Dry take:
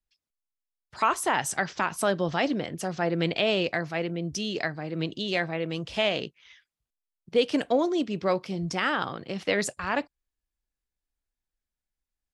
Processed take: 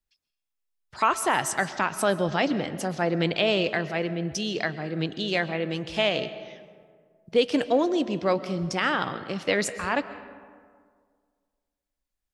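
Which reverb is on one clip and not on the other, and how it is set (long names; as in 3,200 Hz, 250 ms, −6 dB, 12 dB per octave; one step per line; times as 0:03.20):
comb and all-pass reverb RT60 1.9 s, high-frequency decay 0.45×, pre-delay 90 ms, DRR 13.5 dB
level +1.5 dB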